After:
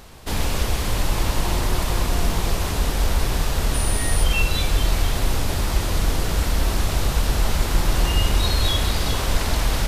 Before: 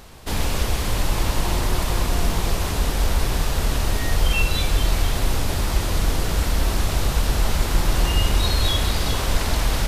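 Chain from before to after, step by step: 3.73–4.23 s: whistle 9.4 kHz -28 dBFS

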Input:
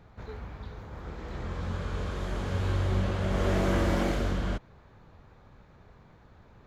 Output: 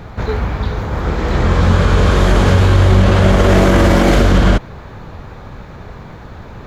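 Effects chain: loudness maximiser +23.5 dB; trim -1 dB

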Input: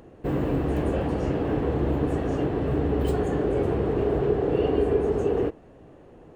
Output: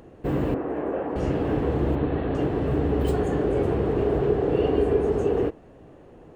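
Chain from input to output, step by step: 0.54–1.16 s: three-band isolator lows -20 dB, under 260 Hz, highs -23 dB, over 2.1 kHz; 1.95–2.35 s: elliptic low-pass 4.1 kHz, stop band 40 dB; trim +1 dB

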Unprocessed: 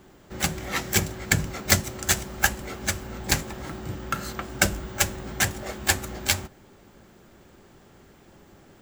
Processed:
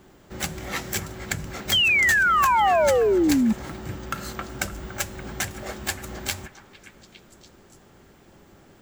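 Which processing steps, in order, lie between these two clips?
compression 10:1, threshold -24 dBFS, peak gain reduction 11.5 dB; painted sound fall, 1.72–3.53 s, 210–3300 Hz -19 dBFS; repeats whose band climbs or falls 287 ms, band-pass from 1.1 kHz, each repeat 0.7 oct, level -11 dB

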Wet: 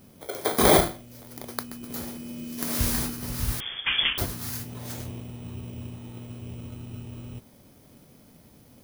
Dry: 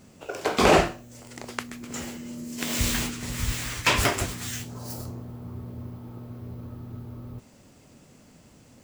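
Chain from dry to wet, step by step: bit-reversed sample order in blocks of 16 samples; 3.60–4.18 s: frequency inversion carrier 3.4 kHz

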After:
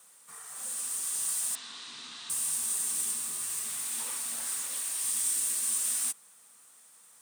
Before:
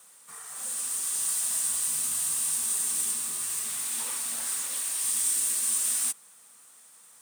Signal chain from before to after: 1.55–2.30 s: cabinet simulation 240–4700 Hz, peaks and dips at 280 Hz +5 dB, 610 Hz -9 dB, 3.8 kHz +8 dB; trim -3 dB

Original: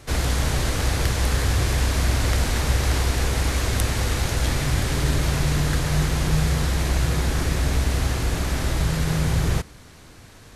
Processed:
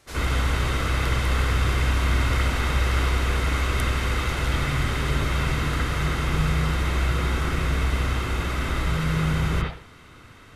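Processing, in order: bass shelf 350 Hz -10 dB; reverberation, pre-delay 63 ms, DRR -10.5 dB; trim -8.5 dB

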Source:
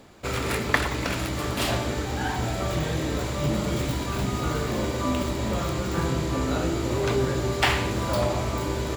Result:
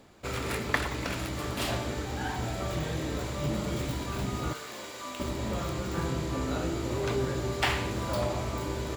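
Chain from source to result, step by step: 4.53–5.20 s: high-pass 1.4 kHz 6 dB/octave; trim -5.5 dB

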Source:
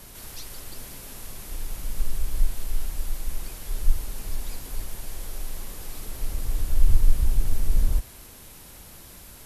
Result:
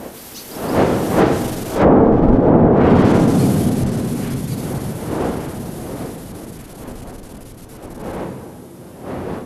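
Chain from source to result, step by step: single-diode clipper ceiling -22 dBFS; wind noise 430 Hz -25 dBFS; Doppler pass-by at 2.24 s, 18 m/s, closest 2.1 m; feedback echo behind a high-pass 1176 ms, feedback 51%, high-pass 1.9 kHz, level -22 dB; low-pass that closes with the level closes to 970 Hz, closed at -26 dBFS; high-pass 250 Hz 6 dB/octave; on a send at -7.5 dB: reverberation RT60 3.5 s, pre-delay 3 ms; on the sum: gain riding within 5 dB 0.5 s; loudness maximiser +27 dB; trim -1 dB

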